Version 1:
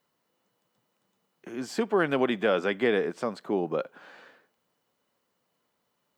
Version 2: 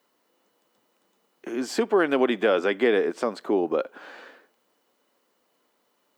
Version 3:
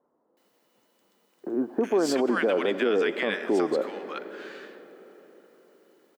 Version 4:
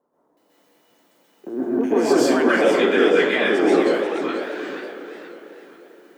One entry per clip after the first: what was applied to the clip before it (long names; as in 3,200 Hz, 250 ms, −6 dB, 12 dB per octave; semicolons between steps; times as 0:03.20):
low shelf with overshoot 200 Hz −10.5 dB, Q 1.5; in parallel at 0 dB: downward compressor, threshold −31 dBFS, peak gain reduction 12.5 dB
multiband delay without the direct sound lows, highs 370 ms, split 1,100 Hz; on a send at −15 dB: convolution reverb RT60 4.7 s, pre-delay 70 ms; on the sum: brickwall limiter −17.5 dBFS, peak gain reduction 8 dB; level +2 dB
dense smooth reverb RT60 0.53 s, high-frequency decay 0.75×, pre-delay 115 ms, DRR −7.5 dB; feedback echo with a swinging delay time 481 ms, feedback 40%, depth 193 cents, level −9.5 dB